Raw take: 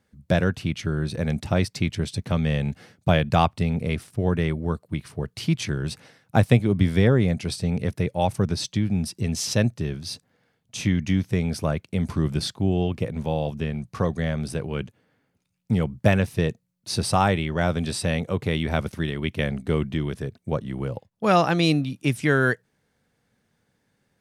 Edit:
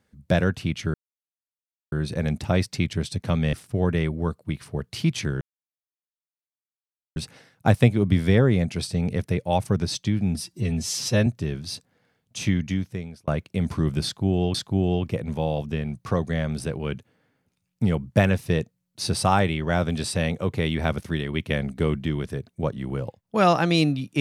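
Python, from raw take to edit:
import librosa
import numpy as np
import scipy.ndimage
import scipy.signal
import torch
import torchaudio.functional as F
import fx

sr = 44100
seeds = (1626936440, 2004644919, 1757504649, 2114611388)

y = fx.edit(x, sr, fx.insert_silence(at_s=0.94, length_s=0.98),
    fx.cut(start_s=2.55, length_s=1.42),
    fx.insert_silence(at_s=5.85, length_s=1.75),
    fx.stretch_span(start_s=9.04, length_s=0.61, factor=1.5),
    fx.fade_out_span(start_s=10.86, length_s=0.8),
    fx.repeat(start_s=12.43, length_s=0.5, count=2), tone=tone)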